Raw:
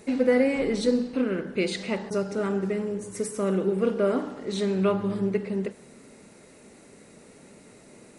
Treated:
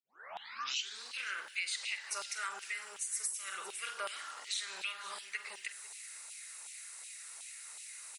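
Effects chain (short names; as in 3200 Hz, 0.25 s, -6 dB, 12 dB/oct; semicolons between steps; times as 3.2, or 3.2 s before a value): tape start at the beginning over 1.08 s; doubler 46 ms -13 dB; echo 0.499 s -21 dB; LFO high-pass saw down 2.7 Hz 840–3000 Hz; pre-emphasis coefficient 0.97; compressor 5:1, threshold -45 dBFS, peak gain reduction 12.5 dB; gain +10 dB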